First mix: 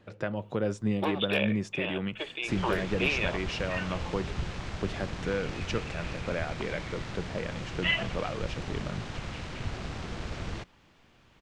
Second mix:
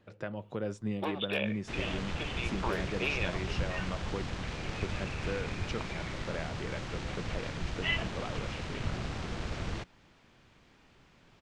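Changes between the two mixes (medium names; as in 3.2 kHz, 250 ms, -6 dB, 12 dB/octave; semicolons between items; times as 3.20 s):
speech -6.0 dB; first sound -4.5 dB; second sound: entry -0.80 s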